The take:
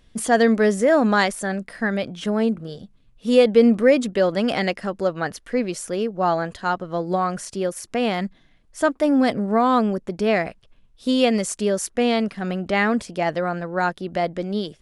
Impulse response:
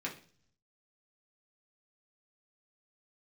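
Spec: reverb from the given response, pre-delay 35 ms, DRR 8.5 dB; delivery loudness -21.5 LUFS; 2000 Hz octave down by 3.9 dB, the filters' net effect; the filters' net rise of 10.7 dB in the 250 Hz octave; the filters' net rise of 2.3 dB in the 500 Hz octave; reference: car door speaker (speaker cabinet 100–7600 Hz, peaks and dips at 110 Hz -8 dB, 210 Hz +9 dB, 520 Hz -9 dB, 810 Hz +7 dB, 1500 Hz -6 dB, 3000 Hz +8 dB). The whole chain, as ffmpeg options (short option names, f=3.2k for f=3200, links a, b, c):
-filter_complex "[0:a]equalizer=f=250:t=o:g=5.5,equalizer=f=500:t=o:g=6,equalizer=f=2k:t=o:g=-3.5,asplit=2[a][b];[1:a]atrim=start_sample=2205,adelay=35[c];[b][c]afir=irnorm=-1:irlink=0,volume=-11dB[d];[a][d]amix=inputs=2:normalize=0,highpass=100,equalizer=f=110:t=q:w=4:g=-8,equalizer=f=210:t=q:w=4:g=9,equalizer=f=520:t=q:w=4:g=-9,equalizer=f=810:t=q:w=4:g=7,equalizer=f=1.5k:t=q:w=4:g=-6,equalizer=f=3k:t=q:w=4:g=8,lowpass=f=7.6k:w=0.5412,lowpass=f=7.6k:w=1.3066,volume=-8dB"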